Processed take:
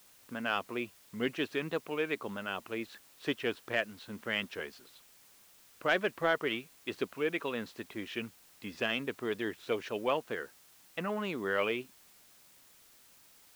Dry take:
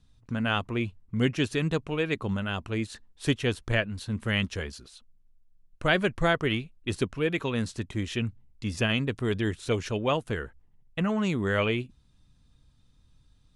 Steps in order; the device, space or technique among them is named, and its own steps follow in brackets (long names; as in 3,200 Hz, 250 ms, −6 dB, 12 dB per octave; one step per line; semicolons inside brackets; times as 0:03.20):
tape answering machine (band-pass filter 330–3,300 Hz; soft clipping −12 dBFS, distortion −24 dB; tape wow and flutter; white noise bed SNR 24 dB)
level −3 dB